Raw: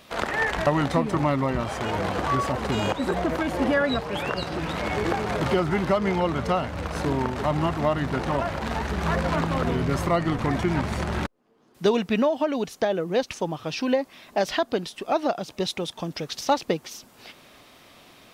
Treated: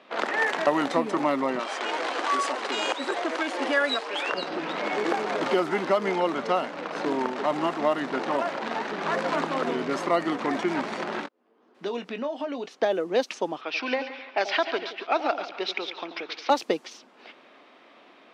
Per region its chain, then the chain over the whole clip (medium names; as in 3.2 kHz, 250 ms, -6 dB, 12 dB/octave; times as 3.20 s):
1.59–4.32 s: Chebyshev band-pass 270–9900 Hz, order 3 + tilt EQ +2.5 dB/octave
11.20–12.67 s: treble shelf 5.7 kHz +6.5 dB + compression 2.5:1, threshold -31 dBFS + doubling 21 ms -10.5 dB
13.61–16.50 s: cabinet simulation 370–5300 Hz, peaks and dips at 540 Hz -6 dB, 1.4 kHz +5 dB, 2.3 kHz +9 dB + two-band feedback delay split 830 Hz, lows 86 ms, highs 141 ms, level -10 dB
whole clip: high-pass 250 Hz 24 dB/octave; level-controlled noise filter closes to 2.4 kHz, open at -18.5 dBFS